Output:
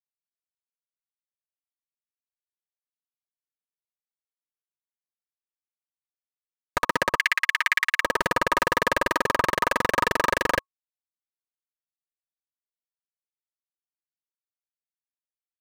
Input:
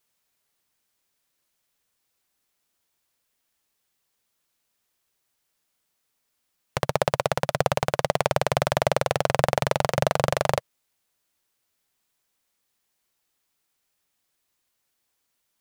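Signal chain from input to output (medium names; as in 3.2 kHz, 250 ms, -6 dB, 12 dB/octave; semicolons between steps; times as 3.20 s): fuzz box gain 28 dB, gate -36 dBFS; ring modulator 1.1 kHz; 7.17–8.02 s: resonant high-pass 2.1 kHz, resonance Q 3.3; trim +1 dB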